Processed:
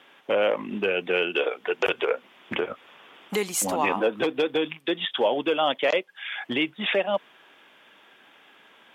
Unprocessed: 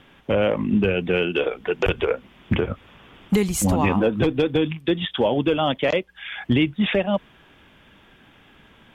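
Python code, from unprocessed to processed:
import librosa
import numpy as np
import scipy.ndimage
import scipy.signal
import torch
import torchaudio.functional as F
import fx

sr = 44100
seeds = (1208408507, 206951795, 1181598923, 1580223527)

y = scipy.signal.sosfilt(scipy.signal.butter(2, 450.0, 'highpass', fs=sr, output='sos'), x)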